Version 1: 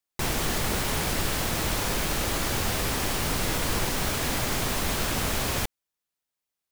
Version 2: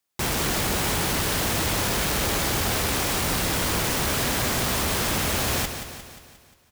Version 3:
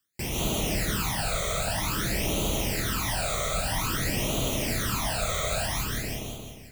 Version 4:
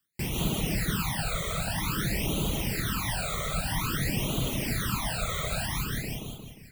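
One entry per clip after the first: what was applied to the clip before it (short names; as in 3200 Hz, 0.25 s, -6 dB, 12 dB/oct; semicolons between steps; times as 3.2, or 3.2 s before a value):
HPF 43 Hz; hard clip -30 dBFS, distortion -8 dB; on a send: feedback echo 0.177 s, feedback 54%, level -9 dB; on the sum: gain +7 dB
reverse; compressor 4:1, threshold -36 dBFS, peak gain reduction 11.5 dB; reverse; reverb RT60 0.65 s, pre-delay 0.11 s, DRR -3.5 dB; phaser stages 12, 0.51 Hz, lowest notch 280–1700 Hz; gain +5 dB
reverb removal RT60 0.7 s; fifteen-band EQ 160 Hz +6 dB, 630 Hz -5 dB, 6300 Hz -6 dB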